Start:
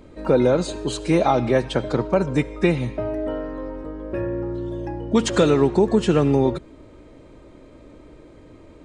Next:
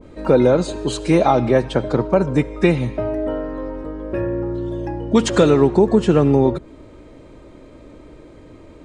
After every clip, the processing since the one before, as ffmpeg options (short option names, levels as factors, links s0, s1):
-af "adynamicequalizer=threshold=0.0158:dfrequency=1600:dqfactor=0.7:tfrequency=1600:tqfactor=0.7:attack=5:release=100:ratio=0.375:range=3:mode=cutabove:tftype=highshelf,volume=1.5"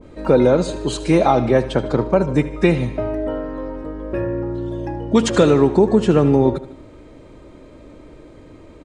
-af "aecho=1:1:76|152|228|304:0.168|0.0823|0.0403|0.0198"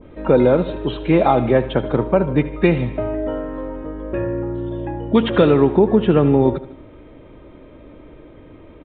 -af "aresample=8000,aresample=44100"